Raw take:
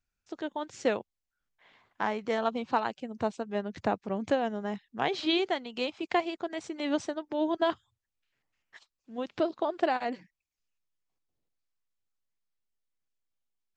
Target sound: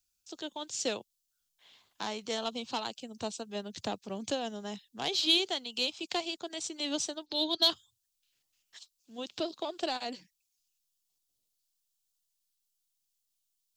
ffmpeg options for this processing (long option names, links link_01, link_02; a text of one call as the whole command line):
ffmpeg -i in.wav -filter_complex "[0:a]asettb=1/sr,asplit=3[link_01][link_02][link_03];[link_01]atrim=end=7.264[link_04];[link_02]atrim=start=7.26:end=7.7,asetpts=PTS-STARTPTS,afade=type=in:duration=0.004:curve=qsin,afade=type=out:start_time=0.436:duration=0.004:curve=qsin,lowpass=frequency=4200:width_type=q:width=9.6[link_05];[link_03]atrim=start=7.696[link_06];[link_04][link_05]acrossfade=duration=0.004:curve1=hsin:curve2=qsin[link_07];[link_07][link_06]acrossfade=duration=0.004:curve1=qsin:curve2=hsin,acrossover=split=250|470|3100[link_08][link_09][link_10][link_11];[link_10]asoftclip=type=tanh:threshold=-23.5dB[link_12];[link_08][link_09][link_12][link_11]amix=inputs=4:normalize=0,aexciter=amount=3.4:drive=9.3:freq=2900,volume=-6dB" out.wav